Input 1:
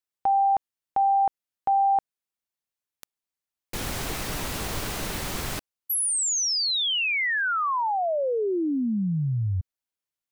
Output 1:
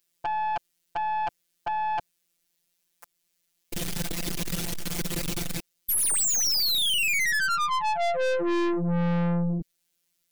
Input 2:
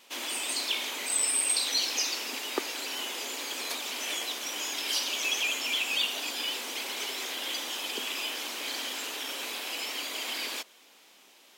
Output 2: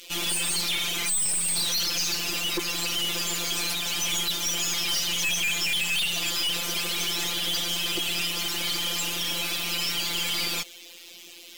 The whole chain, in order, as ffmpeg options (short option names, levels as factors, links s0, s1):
-filter_complex "[0:a]equalizer=f=1000:w=0.8:g=-10.5,asplit=2[s0][s1];[s1]alimiter=level_in=1.19:limit=0.0631:level=0:latency=1:release=241,volume=0.841,volume=1.12[s2];[s0][s2]amix=inputs=2:normalize=0,acontrast=87,afftfilt=real='hypot(re,im)*cos(PI*b)':imag='0':win_size=1024:overlap=0.75,aeval=exprs='(tanh(39.8*val(0)+0.4)-tanh(0.4))/39.8':c=same,volume=2.51"